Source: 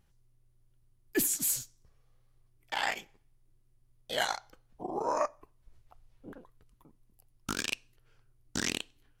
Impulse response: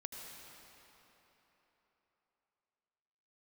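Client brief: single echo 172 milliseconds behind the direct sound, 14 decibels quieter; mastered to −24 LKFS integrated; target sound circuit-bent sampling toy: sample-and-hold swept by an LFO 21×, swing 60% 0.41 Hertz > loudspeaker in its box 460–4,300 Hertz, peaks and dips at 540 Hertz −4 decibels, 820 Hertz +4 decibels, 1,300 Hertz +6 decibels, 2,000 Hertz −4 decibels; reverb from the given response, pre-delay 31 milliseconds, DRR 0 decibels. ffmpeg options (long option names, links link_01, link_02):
-filter_complex "[0:a]aecho=1:1:172:0.2,asplit=2[link_01][link_02];[1:a]atrim=start_sample=2205,adelay=31[link_03];[link_02][link_03]afir=irnorm=-1:irlink=0,volume=2dB[link_04];[link_01][link_04]amix=inputs=2:normalize=0,acrusher=samples=21:mix=1:aa=0.000001:lfo=1:lforange=12.6:lforate=0.41,highpass=460,equalizer=frequency=540:width_type=q:width=4:gain=-4,equalizer=frequency=820:width_type=q:width=4:gain=4,equalizer=frequency=1300:width_type=q:width=4:gain=6,equalizer=frequency=2000:width_type=q:width=4:gain=-4,lowpass=frequency=4300:width=0.5412,lowpass=frequency=4300:width=1.3066,volume=10dB"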